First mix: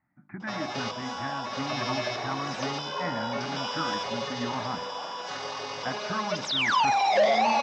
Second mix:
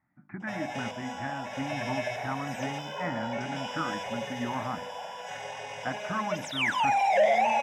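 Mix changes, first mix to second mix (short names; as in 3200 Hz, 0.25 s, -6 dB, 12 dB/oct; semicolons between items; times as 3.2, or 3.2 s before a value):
background: add fixed phaser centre 1200 Hz, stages 6; master: remove LPF 6300 Hz 24 dB/oct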